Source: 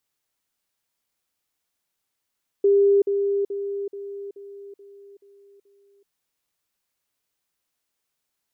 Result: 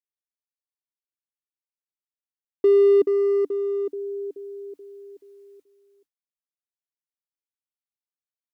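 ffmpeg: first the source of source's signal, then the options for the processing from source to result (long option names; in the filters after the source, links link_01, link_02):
-f lavfi -i "aevalsrc='pow(10,(-13.5-6*floor(t/0.43))/20)*sin(2*PI*400*t)*clip(min(mod(t,0.43),0.38-mod(t,0.43))/0.005,0,1)':duration=3.44:sample_rate=44100"
-filter_complex "[0:a]equalizer=frequency=290:width_type=o:width=0.26:gain=9.5,agate=range=-33dB:threshold=-53dB:ratio=3:detection=peak,asplit=2[link_01][link_02];[link_02]asoftclip=type=hard:threshold=-27.5dB,volume=-6.5dB[link_03];[link_01][link_03]amix=inputs=2:normalize=0"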